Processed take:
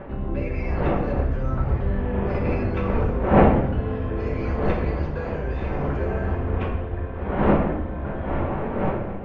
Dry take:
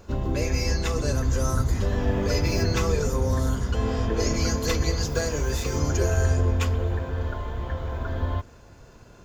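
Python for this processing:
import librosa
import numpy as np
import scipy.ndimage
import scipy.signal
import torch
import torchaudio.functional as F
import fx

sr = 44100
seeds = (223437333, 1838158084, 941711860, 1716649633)

y = fx.dmg_wind(x, sr, seeds[0], corner_hz=610.0, level_db=-25.0)
y = scipy.signal.sosfilt(scipy.signal.butter(4, 2600.0, 'lowpass', fs=sr, output='sos'), y)
y = fx.room_shoebox(y, sr, seeds[1], volume_m3=330.0, walls='mixed', distance_m=1.1)
y = F.gain(torch.from_numpy(y), -5.0).numpy()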